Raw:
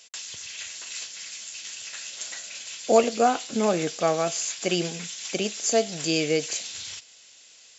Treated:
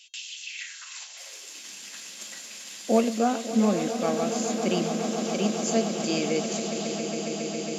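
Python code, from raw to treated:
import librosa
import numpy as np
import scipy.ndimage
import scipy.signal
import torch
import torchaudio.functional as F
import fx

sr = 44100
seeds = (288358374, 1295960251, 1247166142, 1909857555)

y = fx.cvsd(x, sr, bps=64000, at=(1.17, 3.18))
y = fx.comb_fb(y, sr, f0_hz=540.0, decay_s=0.59, harmonics='all', damping=0.0, mix_pct=70)
y = fx.echo_swell(y, sr, ms=137, loudest=8, wet_db=-12.5)
y = fx.filter_sweep_highpass(y, sr, from_hz=2800.0, to_hz=210.0, start_s=0.45, end_s=1.73, q=4.0)
y = y * 10.0 ** (4.0 / 20.0)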